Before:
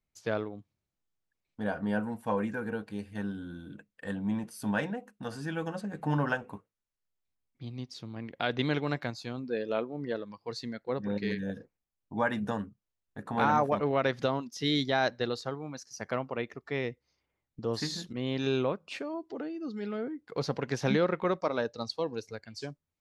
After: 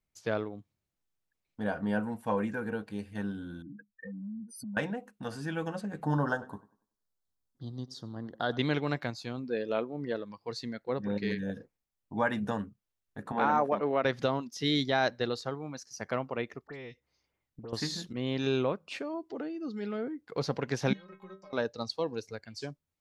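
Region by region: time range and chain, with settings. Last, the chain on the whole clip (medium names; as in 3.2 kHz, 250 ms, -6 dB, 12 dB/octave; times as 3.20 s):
3.62–4.77 s: spectral contrast enhancement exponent 3.1 + compression 4:1, threshold -39 dBFS
6.04–8.58 s: Butterworth band-stop 2.4 kHz, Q 1.4 + tape echo 96 ms, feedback 34%, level -18 dB, low-pass 2.6 kHz
13.32–14.05 s: high-pass 220 Hz + treble shelf 3.5 kHz -10.5 dB
16.67–17.73 s: compression 3:1, threshold -42 dBFS + phase dispersion highs, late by 73 ms, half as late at 2.5 kHz
20.93–21.53 s: treble shelf 5.3 kHz +10.5 dB + compression 10:1, threshold -33 dBFS + inharmonic resonator 190 Hz, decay 0.27 s, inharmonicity 0.008
whole clip: none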